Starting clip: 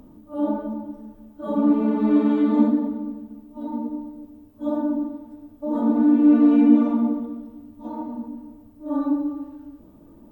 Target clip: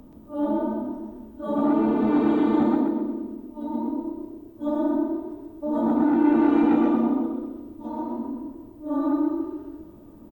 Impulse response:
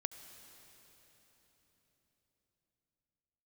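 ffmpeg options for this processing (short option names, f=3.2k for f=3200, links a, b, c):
-filter_complex "[0:a]acrossover=split=550[a][b];[a]asoftclip=type=tanh:threshold=-19.5dB[c];[c][b]amix=inputs=2:normalize=0,asplit=5[d][e][f][g][h];[e]adelay=127,afreqshift=32,volume=-3dB[i];[f]adelay=254,afreqshift=64,volume=-13.2dB[j];[g]adelay=381,afreqshift=96,volume=-23.3dB[k];[h]adelay=508,afreqshift=128,volume=-33.5dB[l];[d][i][j][k][l]amix=inputs=5:normalize=0"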